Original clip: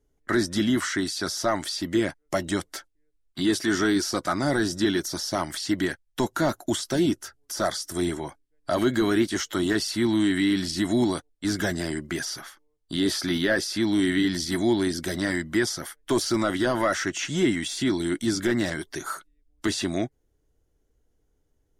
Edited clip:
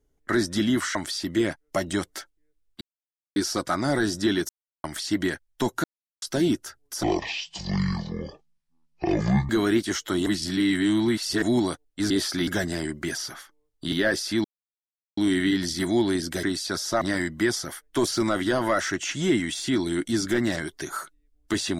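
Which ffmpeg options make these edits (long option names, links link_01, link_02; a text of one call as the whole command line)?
ffmpeg -i in.wav -filter_complex "[0:a]asplit=18[link_01][link_02][link_03][link_04][link_05][link_06][link_07][link_08][link_09][link_10][link_11][link_12][link_13][link_14][link_15][link_16][link_17][link_18];[link_01]atrim=end=0.952[link_19];[link_02]atrim=start=1.528:end=3.39,asetpts=PTS-STARTPTS,afade=type=out:start_time=1.858:duration=0.004:curve=hsin[link_20];[link_03]atrim=start=3.39:end=3.94,asetpts=PTS-STARTPTS,volume=0[link_21];[link_04]atrim=start=3.94:end=5.07,asetpts=PTS-STARTPTS,afade=type=in:duration=0.004:curve=hsin,afade=type=out:start_time=1.126:duration=0.004:curve=hsin[link_22];[link_05]atrim=start=5.07:end=5.42,asetpts=PTS-STARTPTS,volume=0[link_23];[link_06]atrim=start=5.42:end=6.42,asetpts=PTS-STARTPTS,afade=type=in:duration=0.004:curve=hsin,afade=type=out:start_time=0.996:duration=0.004:curve=hsin[link_24];[link_07]atrim=start=6.42:end=6.8,asetpts=PTS-STARTPTS,volume=0[link_25];[link_08]atrim=start=6.8:end=7.614,asetpts=PTS-STARTPTS,afade=type=in:duration=0.004:curve=hsin[link_26];[link_09]atrim=start=7.61:end=8.94,asetpts=PTS-STARTPTS,asetrate=23814,aresample=44100[link_27];[link_10]atrim=start=8.936:end=9.712[link_28];[link_11]atrim=start=9.708:end=10.872,asetpts=PTS-STARTPTS,areverse[link_29];[link_12]atrim=start=10.868:end=11.552[link_30];[link_13]atrim=start=12.998:end=13.372[link_31];[link_14]atrim=start=11.548:end=13.002[link_32];[link_15]atrim=start=13.368:end=13.89,asetpts=PTS-STARTPTS,afade=type=out:start_time=0.518:duration=0.004:curve=hsin,apad=pad_dur=0.73[link_33];[link_16]atrim=start=13.89:end=15.152,asetpts=PTS-STARTPTS,afade=type=in:duration=0.004:curve=hsin[link_34];[link_17]atrim=start=0.948:end=1.532[link_35];[link_18]atrim=start=15.148[link_36];[link_20][link_21][link_22][link_23][link_24][link_25][link_26]concat=n=7:v=0:a=1[link_37];[link_19][link_37]acrossfade=duration=0.004:curve1=hsin:curve2=hsin[link_38];[link_38][link_27]acrossfade=duration=0.004:curve1=hsin:curve2=hsin[link_39];[link_39][link_28]acrossfade=duration=0.004:curve1=hsin:curve2=hsin[link_40];[link_40][link_29]acrossfade=duration=0.004:curve1=hsin:curve2=hsin[link_41];[link_41][link_30]acrossfade=duration=0.004:curve1=hsin:curve2=hsin[link_42];[link_42][link_31]acrossfade=duration=0.004:curve1=hsin:curve2=hsin[link_43];[link_43][link_32]acrossfade=duration=0.004:curve1=hsin:curve2=hsin[link_44];[link_33][link_34]concat=n=2:v=0:a=1[link_45];[link_44][link_45]acrossfade=duration=0.004:curve1=hsin:curve2=hsin[link_46];[link_46][link_35]acrossfade=duration=0.004:curve1=hsin:curve2=hsin[link_47];[link_47][link_36]acrossfade=duration=0.004:curve1=hsin:curve2=hsin" out.wav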